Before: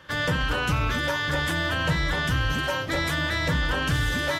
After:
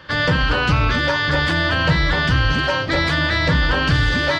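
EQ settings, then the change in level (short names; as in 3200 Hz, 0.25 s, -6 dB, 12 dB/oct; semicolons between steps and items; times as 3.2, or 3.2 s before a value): tape spacing loss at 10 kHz 29 dB; high shelf 2000 Hz +10 dB; bell 4600 Hz +10.5 dB 0.27 oct; +8.0 dB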